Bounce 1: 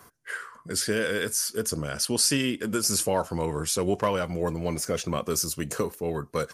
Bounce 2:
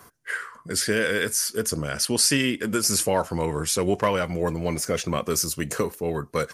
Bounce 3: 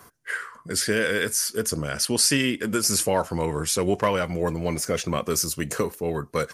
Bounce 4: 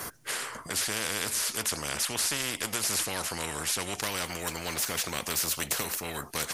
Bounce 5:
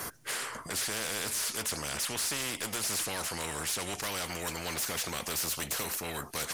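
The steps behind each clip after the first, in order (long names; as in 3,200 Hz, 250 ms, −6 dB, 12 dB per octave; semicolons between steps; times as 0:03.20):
dynamic equaliser 2,000 Hz, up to +5 dB, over −46 dBFS, Q 2.4; level +2.5 dB
no processing that can be heard
every bin compressed towards the loudest bin 4 to 1; level −4 dB
soft clipping −27 dBFS, distortion −12 dB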